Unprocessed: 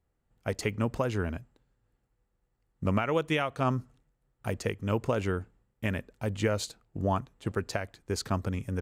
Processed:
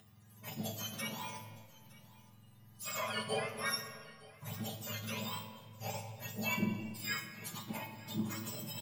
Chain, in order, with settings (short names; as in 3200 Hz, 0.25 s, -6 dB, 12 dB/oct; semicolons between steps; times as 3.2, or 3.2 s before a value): spectrum mirrored in octaves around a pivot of 1200 Hz; harmonic-percussive split percussive -13 dB; upward compressor, threshold -44 dBFS; on a send: echo 0.913 s -19.5 dB; on the sum: overloaded stage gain 29 dB; resonator 110 Hz, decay 0.28 s, harmonics all, mix 80%; in parallel at -9 dB: backlash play -47 dBFS; on the sum: shoebox room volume 3700 m³, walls mixed, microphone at 1.3 m; gain +6 dB